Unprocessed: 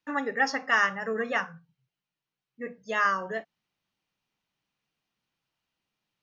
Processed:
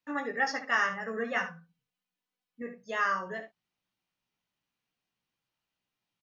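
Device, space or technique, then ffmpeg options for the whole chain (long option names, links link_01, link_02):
slapback doubling: -filter_complex "[0:a]asettb=1/sr,asplit=3[link_01][link_02][link_03];[link_01]atrim=end=1.364[link_04];[link_02]atrim=start=1.36:end=2.62,asetpts=PTS-STARTPTS,afade=type=in:duration=0.004:curve=qsin,afade=type=out:start_time=1.256:duration=0.004:curve=qsin,aecho=1:1:4:0.8,atrim=end_sample=55566[link_05];[link_03]atrim=start=2.616[link_06];[link_04][link_05]acrossfade=duration=0.004:curve1=hsin:curve2=qsin[link_07];[link_07][link_06]acrossfade=duration=0.004:curve1=qsin:curve2=hsin,asplit=3[link_08][link_09][link_10];[link_09]adelay=17,volume=-5dB[link_11];[link_10]adelay=72,volume=-10.5dB[link_12];[link_08][link_11][link_12]amix=inputs=3:normalize=0,volume=-5dB"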